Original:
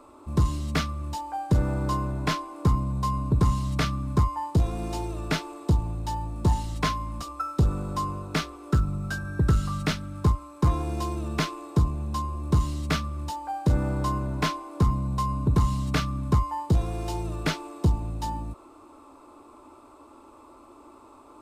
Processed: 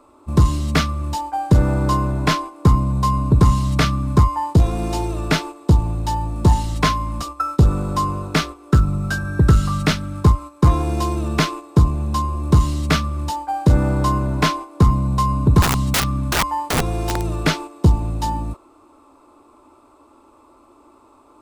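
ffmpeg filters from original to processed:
ffmpeg -i in.wav -filter_complex "[0:a]asettb=1/sr,asplit=3[link_01][link_02][link_03];[link_01]atrim=end=15.624[link_04];[link_02]atrim=start=15.62:end=17.37,asetpts=PTS-STARTPTS,afade=type=in:duration=0.004:curve=qsin,afade=type=out:start_time=1.746:duration=0.004:curve=qsin,aeval=exprs='(mod(11.2*val(0)+1,2)-1)/11.2':channel_layout=same[link_05];[link_03]atrim=start=17.366[link_06];[link_04][link_05]acrossfade=duration=0.004:curve1=hsin:curve2=qsin[link_07];[link_07][link_06]acrossfade=duration=0.004:curve1=qsin:curve2=hsin,agate=range=-9dB:threshold=-37dB:ratio=16:detection=peak,volume=8.5dB" out.wav

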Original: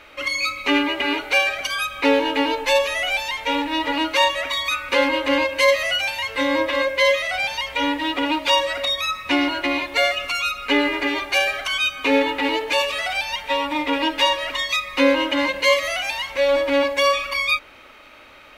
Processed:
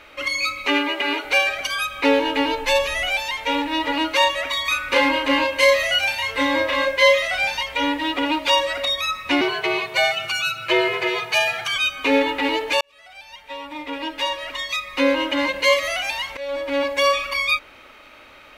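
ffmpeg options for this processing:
ffmpeg -i in.wav -filter_complex "[0:a]asettb=1/sr,asplit=3[link_01][link_02][link_03];[link_01]atrim=end=0.664[link_04];[link_02]atrim=start=0.66:end=1.25,asetpts=PTS-STARTPTS,afade=type=in:duration=0.004:curve=qsin,afade=type=out:start_time=0.586:duration=0.004:curve=qsin,highpass=300[link_05];[link_03]atrim=start=1.246[link_06];[link_04][link_05]acrossfade=duration=0.004:curve1=hsin:curve2=qsin[link_07];[link_07][link_06]acrossfade=duration=0.004:curve1=qsin:curve2=hsin,asettb=1/sr,asplit=3[link_08][link_09][link_10];[link_08]atrim=end=2.164[link_11];[link_09]atrim=start=2.16:end=3.08,asetpts=PTS-STARTPTS,afade=type=in:duration=0.004:curve=qsin,afade=type=out:start_time=0.916:duration=0.004:curve=qsin,asubboost=boost=8.5:cutoff=220[link_12];[link_10]atrim=start=3.076[link_13];[link_11][link_12]acrossfade=duration=0.004:curve1=hsin:curve2=qsin[link_14];[link_14][link_13]acrossfade=duration=0.004:curve1=qsin:curve2=hsin,asettb=1/sr,asplit=3[link_15][link_16][link_17];[link_15]atrim=end=4.624[link_18];[link_16]atrim=start=4.62:end=7.63,asetpts=PTS-STARTPTS,afade=type=in:duration=0.004:curve=qsin,afade=type=out:start_time=3.006:duration=0.004:curve=qsin,asplit=2[link_19][link_20];[link_20]adelay=33,volume=-4dB[link_21];[link_19][link_21]amix=inputs=2:normalize=0,atrim=end_sample=132741[link_22];[link_17]atrim=start=7.626[link_23];[link_18][link_22]acrossfade=duration=0.004:curve1=hsin:curve2=qsin[link_24];[link_24][link_23]acrossfade=duration=0.004:curve1=qsin:curve2=hsin,asettb=1/sr,asplit=3[link_25][link_26][link_27];[link_25]atrim=end=9.414[link_28];[link_26]atrim=start=9.41:end=11.76,asetpts=PTS-STARTPTS,afade=type=in:duration=0.004:curve=qsin,afade=type=out:start_time=2.346:duration=0.004:curve=qsin,afreqshift=82[link_29];[link_27]atrim=start=11.756[link_30];[link_28][link_29]acrossfade=duration=0.004:curve1=hsin:curve2=qsin[link_31];[link_31][link_30]acrossfade=duration=0.004:curve1=qsin:curve2=hsin,asplit=3[link_32][link_33][link_34];[link_32]atrim=end=12.81,asetpts=PTS-STARTPTS,afade=type=out:start_time=12.806:duration=0.004:curve=hsin[link_35];[link_33]atrim=start=12.81:end=16.37,asetpts=PTS-STARTPTS,afade=type=in:duration=2.83,afade=type=out:start_time=3.556:duration=0.004:curve=hsin:silence=0.177828[link_36];[link_34]atrim=start=16.37,asetpts=PTS-STARTPTS,afade=type=in:duration=0.67:silence=0.177828[link_37];[link_35][link_36][link_37]concat=n=3:v=0:a=1" out.wav

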